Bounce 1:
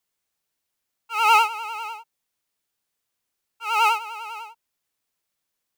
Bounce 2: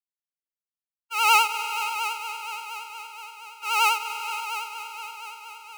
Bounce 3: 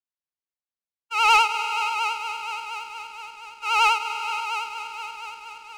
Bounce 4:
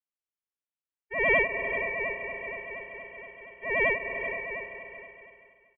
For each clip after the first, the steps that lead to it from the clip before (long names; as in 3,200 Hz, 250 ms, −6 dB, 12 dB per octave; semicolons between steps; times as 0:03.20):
downward expander −35 dBFS; high-shelf EQ 2,600 Hz +11.5 dB; on a send: echo machine with several playback heads 235 ms, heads all three, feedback 60%, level −14 dB; on the sum: level −5 dB
high-frequency loss of the air 76 metres; leveller curve on the samples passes 1
fade-out on the ending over 1.51 s; single-tap delay 387 ms −11.5 dB; voice inversion scrambler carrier 3,200 Hz; level −6 dB